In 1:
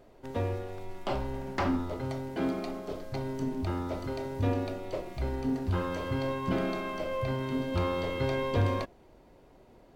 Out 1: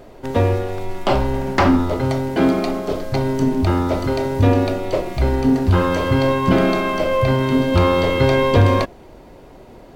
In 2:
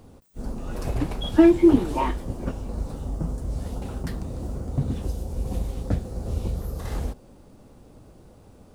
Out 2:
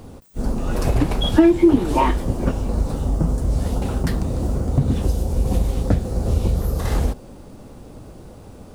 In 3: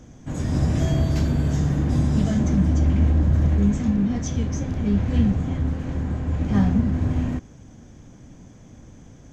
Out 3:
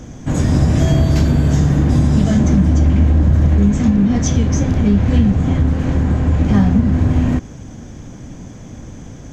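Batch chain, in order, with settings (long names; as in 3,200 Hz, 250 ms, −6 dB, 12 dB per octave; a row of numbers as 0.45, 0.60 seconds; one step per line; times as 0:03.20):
downward compressor 2.5 to 1, threshold −23 dBFS
normalise the peak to −2 dBFS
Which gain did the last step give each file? +15.0, +9.5, +12.0 decibels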